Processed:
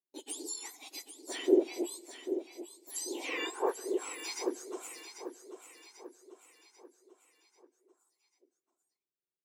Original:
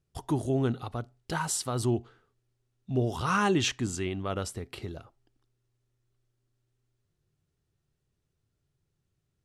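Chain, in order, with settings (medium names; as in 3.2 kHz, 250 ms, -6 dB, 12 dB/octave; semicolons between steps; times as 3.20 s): spectrum inverted on a logarithmic axis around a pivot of 1.7 kHz; low-pass that closes with the level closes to 2.9 kHz, closed at -26.5 dBFS; tone controls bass -10 dB, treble +8 dB; gate with hold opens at -54 dBFS; peaking EQ 370 Hz +12 dB 0.53 oct; feedback delay 791 ms, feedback 47%, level -10 dB; on a send at -24 dB: reverberation RT60 1.7 s, pre-delay 119 ms; on the sum: trim -6 dB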